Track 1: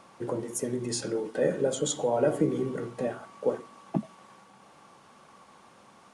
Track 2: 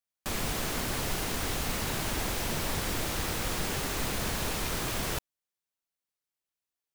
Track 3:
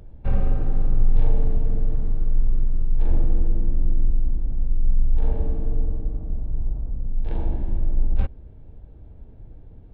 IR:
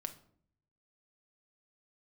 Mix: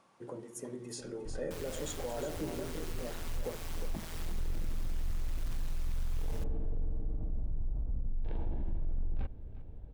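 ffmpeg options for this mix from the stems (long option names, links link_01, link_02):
-filter_complex "[0:a]volume=-12dB,asplit=3[link_01][link_02][link_03];[link_02]volume=-8dB[link_04];[1:a]aeval=exprs='val(0)*sin(2*PI*82*n/s)':channel_layout=same,adelay=1250,volume=-11dB[link_05];[2:a]asoftclip=type=hard:threshold=-16.5dB,adelay=1000,volume=-4.5dB,asplit=2[link_06][link_07];[link_07]volume=-22.5dB[link_08];[link_03]apad=whole_len=482324[link_09];[link_06][link_09]sidechaincompress=threshold=-59dB:ratio=8:attack=12:release=258[link_10];[link_04][link_08]amix=inputs=2:normalize=0,aecho=0:1:358:1[link_11];[link_01][link_05][link_10][link_11]amix=inputs=4:normalize=0,alimiter=level_in=3.5dB:limit=-24dB:level=0:latency=1:release=45,volume=-3.5dB"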